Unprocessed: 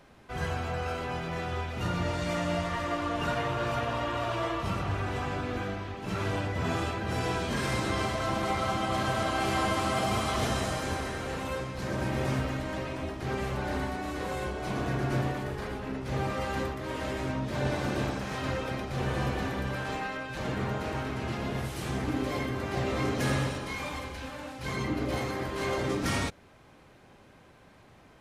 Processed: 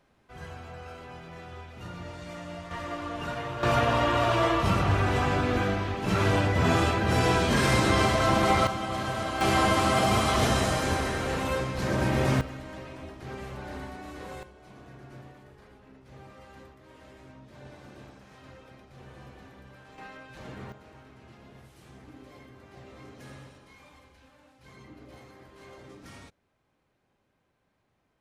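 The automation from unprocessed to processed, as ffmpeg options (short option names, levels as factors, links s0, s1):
-af "asetnsamples=n=441:p=0,asendcmd='2.71 volume volume -4dB;3.63 volume volume 7dB;8.67 volume volume -2dB;9.41 volume volume 5dB;12.41 volume volume -7dB;14.43 volume volume -18dB;19.98 volume volume -10dB;20.72 volume volume -18.5dB',volume=0.316"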